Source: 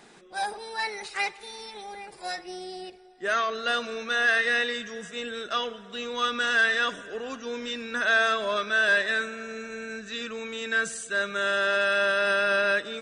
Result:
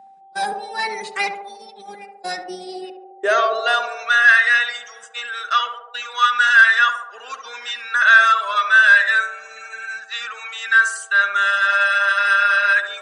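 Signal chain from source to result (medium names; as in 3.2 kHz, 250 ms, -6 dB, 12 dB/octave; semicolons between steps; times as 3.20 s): gate -39 dBFS, range -25 dB; reverb removal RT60 1.2 s; whistle 780 Hz -49 dBFS; high-pass sweep 180 Hz -> 1.3 kHz, 2.44–4.08 s; band-passed feedback delay 70 ms, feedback 77%, band-pass 550 Hz, level -5 dB; trim +6 dB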